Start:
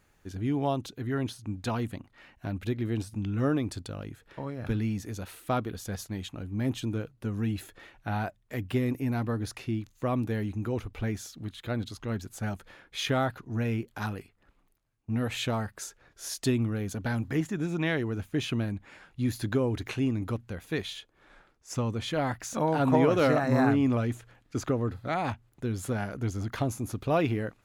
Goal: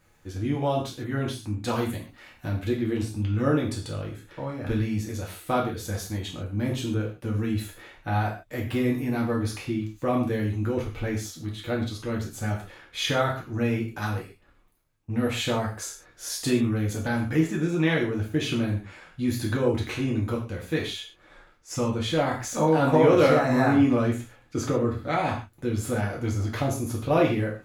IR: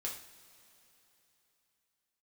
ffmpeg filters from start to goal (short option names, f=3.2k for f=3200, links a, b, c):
-filter_complex "[0:a]asettb=1/sr,asplit=3[a][b][c];[a]atrim=end=1.694[d];[b]atrim=start=1.69:end=2.49,asetpts=PTS-STARTPTS,afade=t=in:d=0.004:c=qsin,afade=t=out:st=0.796:d=0.004:c=qsin,highshelf=f=5.8k:g=10.5[e];[c]atrim=start=2.486[f];[d][e]acrossfade=d=0.004:c1=hsin:c2=qsin[g];[g][f]acrossfade=d=0.004:c1=qsin:c2=hsin[h];[1:a]atrim=start_sample=2205,afade=t=out:st=0.2:d=0.01,atrim=end_sample=9261[i];[h][i]afir=irnorm=-1:irlink=0,volume=5dB"